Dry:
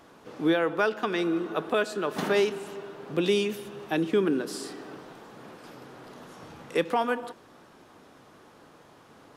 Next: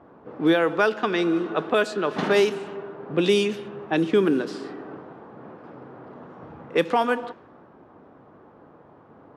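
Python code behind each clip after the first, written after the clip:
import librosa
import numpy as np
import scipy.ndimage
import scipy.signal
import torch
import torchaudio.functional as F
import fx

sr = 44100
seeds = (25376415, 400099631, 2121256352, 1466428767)

y = fx.env_lowpass(x, sr, base_hz=1000.0, full_db=-20.5)
y = scipy.signal.sosfilt(scipy.signal.butter(2, 40.0, 'highpass', fs=sr, output='sos'), y)
y = y * 10.0 ** (4.5 / 20.0)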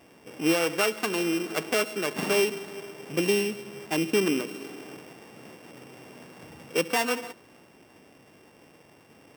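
y = np.r_[np.sort(x[:len(x) // 16 * 16].reshape(-1, 16), axis=1).ravel(), x[len(x) // 16 * 16:]]
y = y * 10.0 ** (-4.5 / 20.0)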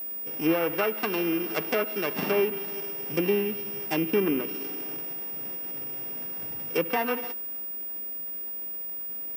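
y = fx.env_lowpass_down(x, sr, base_hz=2000.0, full_db=-21.5)
y = y + 10.0 ** (-32.0 / 20.0) * np.sin(2.0 * np.pi * 15000.0 * np.arange(len(y)) / sr)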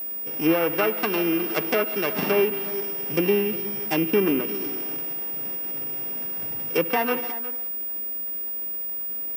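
y = x + 10.0 ** (-15.5 / 20.0) * np.pad(x, (int(360 * sr / 1000.0), 0))[:len(x)]
y = y * 10.0 ** (3.5 / 20.0)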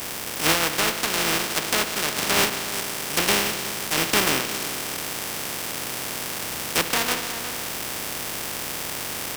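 y = fx.spec_flatten(x, sr, power=0.25)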